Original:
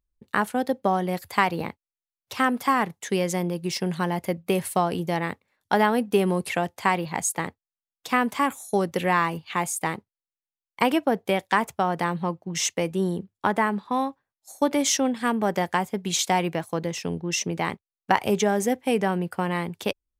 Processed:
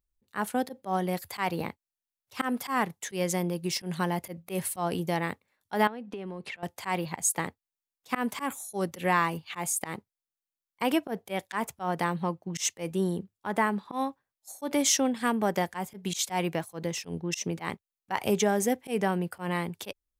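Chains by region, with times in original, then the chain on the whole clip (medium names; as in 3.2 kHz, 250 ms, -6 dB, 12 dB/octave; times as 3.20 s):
5.87–6.63 s: band-pass 120–3600 Hz + compression 10:1, threshold -31 dBFS
whole clip: treble shelf 7.2 kHz +5.5 dB; slow attack 104 ms; trim -3 dB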